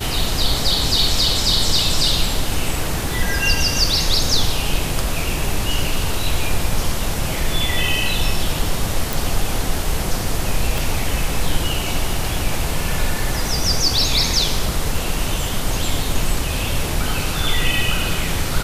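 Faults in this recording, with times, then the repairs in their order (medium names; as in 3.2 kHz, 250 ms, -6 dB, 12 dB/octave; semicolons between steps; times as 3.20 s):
9.13 s: pop
10.78 s: pop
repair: de-click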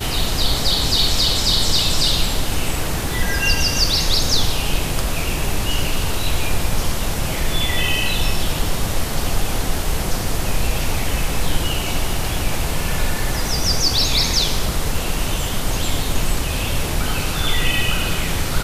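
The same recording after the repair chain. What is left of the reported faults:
10.78 s: pop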